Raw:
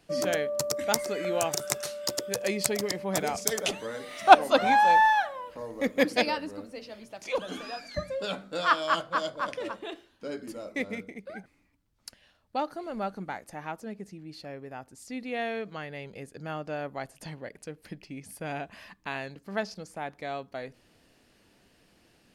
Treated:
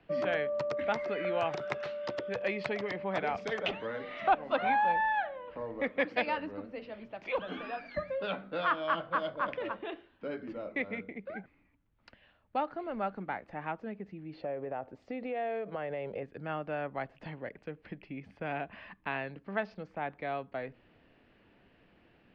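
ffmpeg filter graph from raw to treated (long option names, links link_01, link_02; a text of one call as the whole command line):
ffmpeg -i in.wav -filter_complex "[0:a]asettb=1/sr,asplit=3[link_01][link_02][link_03];[link_01]atrim=end=4.924[link_04];[link_02]atrim=start=4.92:end=5.48,asetpts=PTS-STARTPTS,afade=type=in:duration=0.004:curve=qsin,afade=type=out:start_time=0.556:duration=0.004:curve=qsin,lowpass=frequency=3600:poles=1,equalizer=frequency=1100:width=2.9:gain=-13.5[link_05];[link_03]atrim=start=5.476[link_06];[link_04][link_05]acrossfade=duration=0.004:curve1=hsin:curve2=qsin[link_07];[link_07][link_06]acrossfade=duration=0.004:curve1=qsin:curve2=hsin,asettb=1/sr,asplit=3[link_08][link_09][link_10];[link_08]atrim=end=14.334[link_11];[link_09]atrim=start=14.33:end=16.23,asetpts=PTS-STARTPTS,afade=type=in:duration=0.004:curve=qsin,afade=type=out:start_time=1.896:duration=0.004:curve=qsin,equalizer=frequency=570:width_type=o:width=1.3:gain=13.5,acompressor=threshold=-32dB:ratio=4:attack=3.2:release=140:knee=1:detection=peak[link_12];[link_10]atrim=start=16.226[link_13];[link_11][link_12]acrossfade=duration=0.004:curve1=hsin:curve2=qsin[link_14];[link_14][link_13]acrossfade=duration=0.004:curve1=qsin:curve2=hsin,lowpass=frequency=2900:width=0.5412,lowpass=frequency=2900:width=1.3066,acrossover=split=200|560[link_15][link_16][link_17];[link_15]acompressor=threshold=-47dB:ratio=4[link_18];[link_16]acompressor=threshold=-40dB:ratio=4[link_19];[link_17]acompressor=threshold=-27dB:ratio=4[link_20];[link_18][link_19][link_20]amix=inputs=3:normalize=0" out.wav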